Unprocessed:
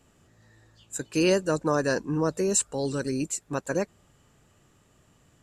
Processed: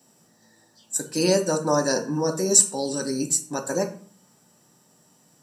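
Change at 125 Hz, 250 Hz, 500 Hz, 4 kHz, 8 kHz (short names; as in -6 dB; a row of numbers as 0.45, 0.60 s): +0.5, +1.0, +2.5, +6.5, +9.5 dB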